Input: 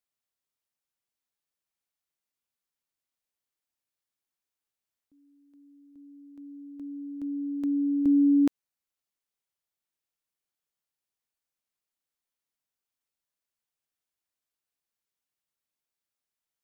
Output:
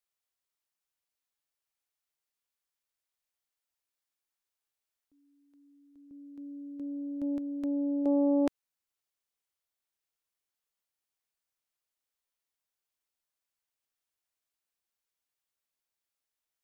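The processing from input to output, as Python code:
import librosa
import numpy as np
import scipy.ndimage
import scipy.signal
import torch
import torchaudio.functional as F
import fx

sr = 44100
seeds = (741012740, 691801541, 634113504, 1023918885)

y = fx.peak_eq(x, sr, hz=180.0, db=fx.steps((0.0, -10.5), (6.11, 2.5), (7.38, -7.0)), octaves=1.4)
y = fx.doppler_dist(y, sr, depth_ms=0.49)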